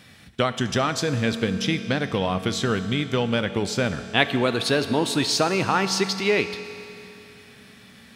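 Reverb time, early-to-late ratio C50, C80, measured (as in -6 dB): 2.9 s, 10.5 dB, 11.0 dB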